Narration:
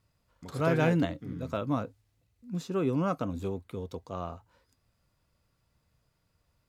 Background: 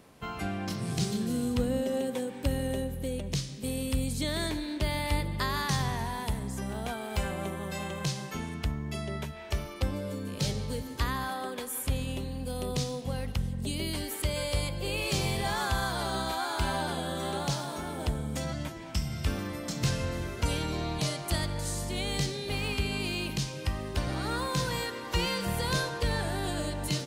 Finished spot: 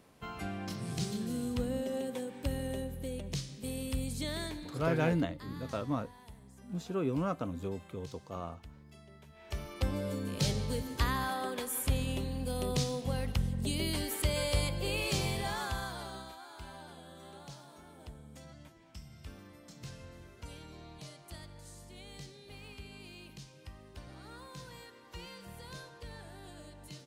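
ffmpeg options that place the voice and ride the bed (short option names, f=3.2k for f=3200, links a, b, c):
-filter_complex "[0:a]adelay=4200,volume=-4dB[a];[1:a]volume=14.5dB,afade=t=out:st=4.32:d=0.59:silence=0.177828,afade=t=in:st=9.25:d=0.75:silence=0.1,afade=t=out:st=14.68:d=1.69:silence=0.133352[b];[a][b]amix=inputs=2:normalize=0"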